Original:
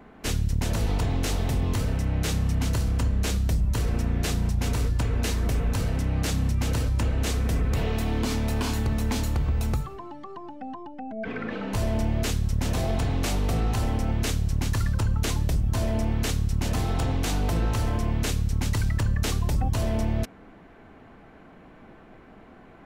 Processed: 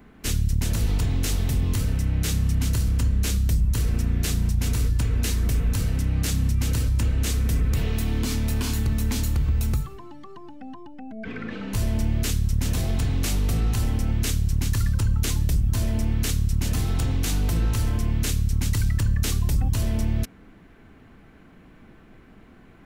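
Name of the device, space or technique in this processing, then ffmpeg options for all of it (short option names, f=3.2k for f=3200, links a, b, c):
smiley-face EQ: -af "lowshelf=f=150:g=3.5,equalizer=f=710:t=o:w=1.5:g=-8,highshelf=f=8.1k:g=8.5"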